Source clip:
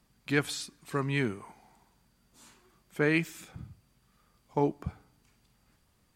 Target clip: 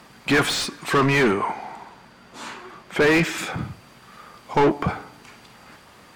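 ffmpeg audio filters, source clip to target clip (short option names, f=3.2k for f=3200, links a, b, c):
-filter_complex "[0:a]asettb=1/sr,asplit=3[a][b][c];[a]atrim=end=1.314[d];[b]atrim=start=1.31:end=3.38,asetpts=PTS-STARTPTS,afade=t=in:d=0.004:c=qsin,afade=t=out:st=2.066:d=0.004:c=qsin,highshelf=f=6.7k:g=-9.5[e];[c]atrim=start=3.376[f];[d][e]acrossfade=d=0.004:c1=hsin:c2=qsin[g];[g][f]acrossfade=d=0.004:c1=qsin:c2=hsin,asplit=2[h][i];[i]highpass=f=720:p=1,volume=33dB,asoftclip=type=tanh:threshold=-11dB[j];[h][j]amix=inputs=2:normalize=0,lowpass=f=1.8k:p=1,volume=-6dB,volume=2.5dB"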